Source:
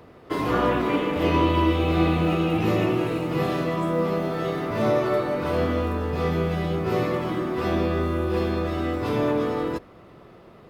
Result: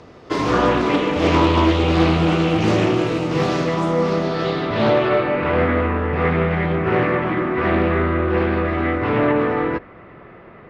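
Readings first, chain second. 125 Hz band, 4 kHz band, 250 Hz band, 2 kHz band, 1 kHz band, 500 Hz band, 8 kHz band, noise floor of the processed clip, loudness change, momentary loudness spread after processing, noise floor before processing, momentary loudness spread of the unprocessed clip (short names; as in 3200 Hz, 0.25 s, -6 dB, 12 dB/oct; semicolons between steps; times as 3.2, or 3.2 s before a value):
+5.0 dB, +7.0 dB, +5.0 dB, +8.5 dB, +6.0 dB, +5.0 dB, n/a, -43 dBFS, +5.5 dB, 4 LU, -49 dBFS, 5 LU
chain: low-pass sweep 6100 Hz -> 2000 Hz, 4.04–5.63; Doppler distortion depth 0.33 ms; gain +5 dB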